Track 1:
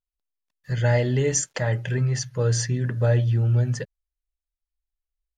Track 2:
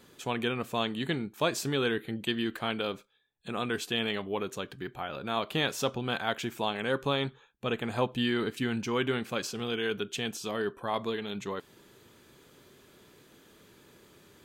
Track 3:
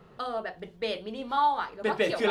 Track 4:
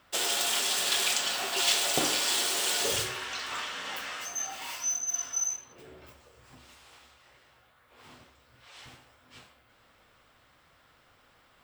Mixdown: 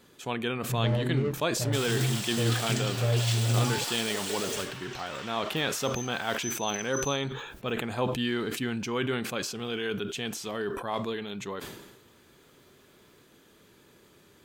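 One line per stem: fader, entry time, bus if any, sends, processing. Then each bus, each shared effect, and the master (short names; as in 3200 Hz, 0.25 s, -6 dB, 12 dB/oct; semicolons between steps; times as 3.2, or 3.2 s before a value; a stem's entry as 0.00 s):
-6.0 dB, 0.00 s, no send, median filter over 41 samples; LPF 2900 Hz 6 dB/oct
-1.0 dB, 0.00 s, no send, sustainer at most 50 dB/s
-5.5 dB, 2.30 s, no send, compressor, threshold -32 dBFS, peak gain reduction 11.5 dB
-7.0 dB, 1.60 s, no send, dry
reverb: off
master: dry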